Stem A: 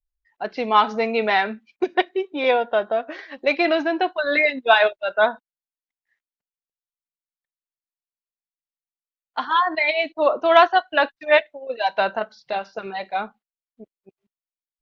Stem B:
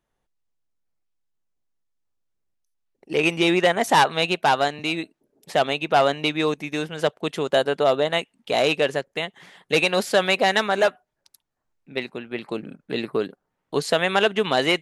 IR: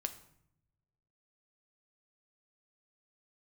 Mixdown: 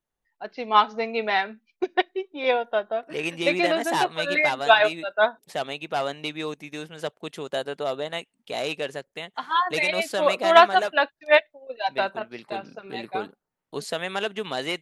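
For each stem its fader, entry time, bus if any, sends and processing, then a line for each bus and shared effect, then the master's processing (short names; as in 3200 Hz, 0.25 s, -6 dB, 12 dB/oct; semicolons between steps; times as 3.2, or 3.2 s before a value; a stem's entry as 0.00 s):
0.0 dB, 0.00 s, no send, upward expander 1.5:1, over -30 dBFS
-9.0 dB, 0.00 s, no send, dry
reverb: off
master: high shelf 4600 Hz +5 dB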